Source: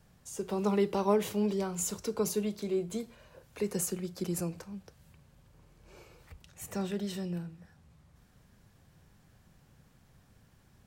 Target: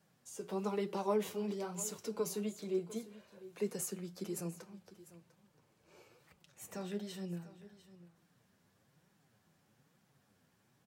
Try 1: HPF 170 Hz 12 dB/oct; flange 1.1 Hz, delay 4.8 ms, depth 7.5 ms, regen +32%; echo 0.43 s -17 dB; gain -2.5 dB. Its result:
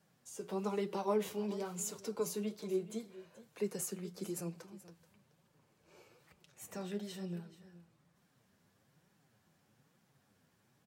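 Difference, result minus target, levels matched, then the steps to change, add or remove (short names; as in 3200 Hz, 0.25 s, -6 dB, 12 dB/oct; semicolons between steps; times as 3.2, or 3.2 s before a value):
echo 0.269 s early
change: echo 0.699 s -17 dB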